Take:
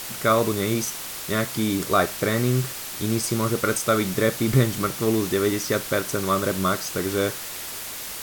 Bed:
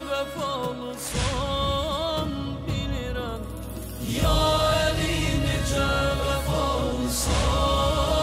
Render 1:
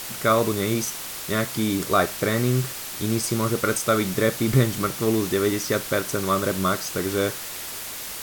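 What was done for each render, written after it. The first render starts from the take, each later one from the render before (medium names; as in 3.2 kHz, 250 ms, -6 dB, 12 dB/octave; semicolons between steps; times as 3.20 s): no audible change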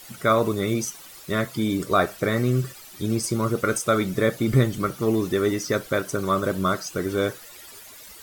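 noise reduction 14 dB, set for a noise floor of -34 dBFS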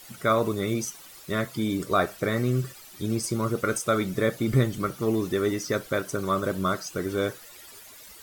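trim -3 dB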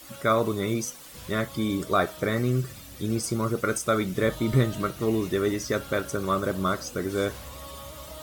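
add bed -20 dB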